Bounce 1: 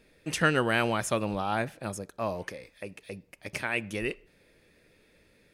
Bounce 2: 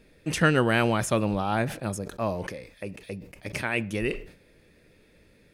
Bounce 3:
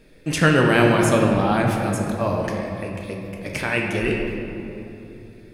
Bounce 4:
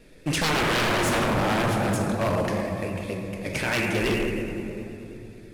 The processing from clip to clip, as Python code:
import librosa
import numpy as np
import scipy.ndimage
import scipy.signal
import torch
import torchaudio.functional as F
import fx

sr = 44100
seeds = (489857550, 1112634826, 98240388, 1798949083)

y1 = fx.low_shelf(x, sr, hz=370.0, db=6.0)
y1 = fx.sustainer(y1, sr, db_per_s=110.0)
y1 = y1 * librosa.db_to_amplitude(1.0)
y2 = fx.room_shoebox(y1, sr, seeds[0], volume_m3=120.0, walls='hard', distance_m=0.4)
y2 = y2 * librosa.db_to_amplitude(3.5)
y3 = fx.cvsd(y2, sr, bps=64000)
y3 = 10.0 ** (-18.0 / 20.0) * (np.abs((y3 / 10.0 ** (-18.0 / 20.0) + 3.0) % 4.0 - 2.0) - 1.0)
y3 = fx.vibrato(y3, sr, rate_hz=9.4, depth_cents=57.0)